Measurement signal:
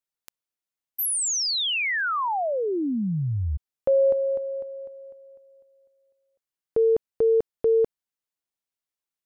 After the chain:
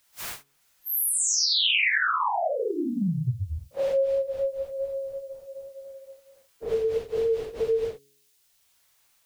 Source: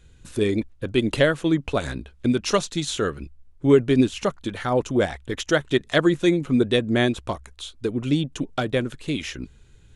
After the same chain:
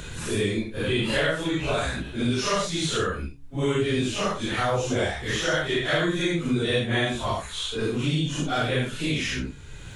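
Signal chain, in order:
random phases in long frames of 200 ms
parametric band 300 Hz −8 dB 1.7 octaves
in parallel at +0.5 dB: downward compressor, threshold −32 dBFS
on the sum: hum removal 139.7 Hz, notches 3
multiband upward and downward compressor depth 70%
level −1.5 dB

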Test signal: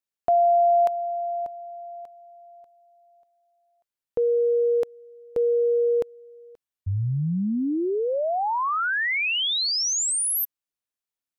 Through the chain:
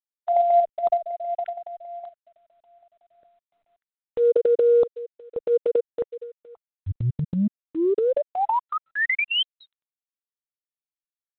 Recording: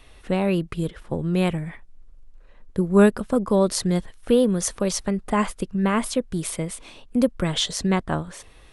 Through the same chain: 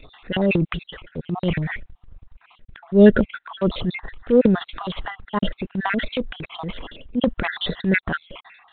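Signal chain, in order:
time-frequency cells dropped at random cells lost 53%
transient designer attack −8 dB, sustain +9 dB
level +5.5 dB
G.726 32 kbit/s 8,000 Hz

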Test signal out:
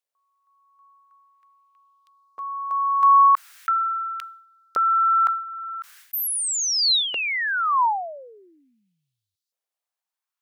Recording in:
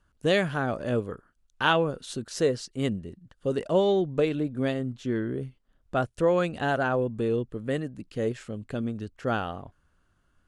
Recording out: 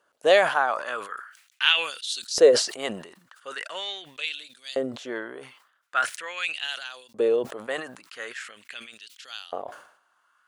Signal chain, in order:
auto-filter high-pass saw up 0.42 Hz 490–4,800 Hz
level that may fall only so fast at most 90 dB per second
level +4 dB

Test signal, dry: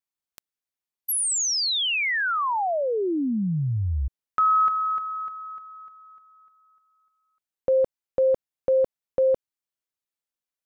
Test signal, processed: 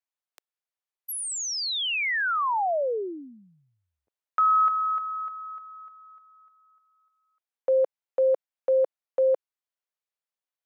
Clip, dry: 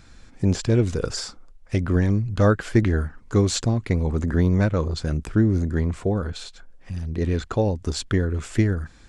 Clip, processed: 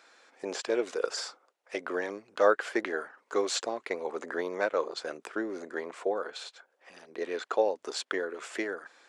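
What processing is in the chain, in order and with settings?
high-pass filter 450 Hz 24 dB per octave
high-shelf EQ 3,900 Hz −8.5 dB

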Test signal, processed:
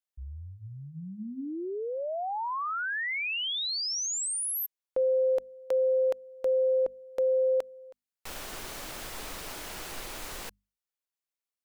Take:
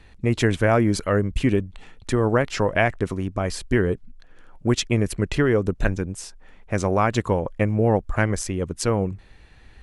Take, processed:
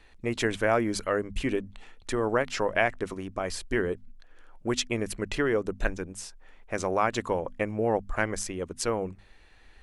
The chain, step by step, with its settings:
parametric band 110 Hz −10.5 dB 2.2 octaves
mains-hum notches 50/100/150/200/250 Hz
level −3.5 dB

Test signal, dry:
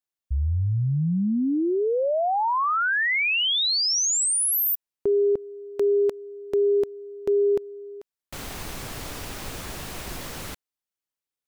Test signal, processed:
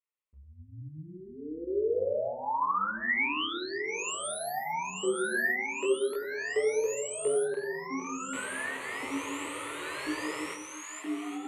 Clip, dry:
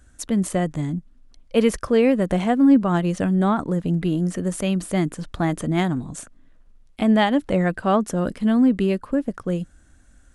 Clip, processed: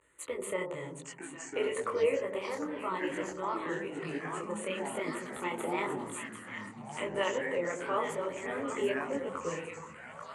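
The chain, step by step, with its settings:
in parallel at +1.5 dB: output level in coarse steps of 22 dB
on the sum: brickwall limiter −13.5 dBFS
echo with a time of its own for lows and highs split 920 Hz, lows 92 ms, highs 786 ms, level −7 dB
amplitude modulation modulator 150 Hz, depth 30%
speech leveller within 4 dB 2 s
tape wow and flutter 0.36 Hz 130 cents
phaser with its sweep stopped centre 1,100 Hz, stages 8
delay with pitch and tempo change per echo 787 ms, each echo −6 semitones, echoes 3, each echo −6 dB
loudspeaker in its box 290–9,200 Hz, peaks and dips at 320 Hz −6 dB, 880 Hz +3 dB, 1,800 Hz +10 dB, 3,600 Hz −6 dB, 5,300 Hz −10 dB
micro pitch shift up and down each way 34 cents

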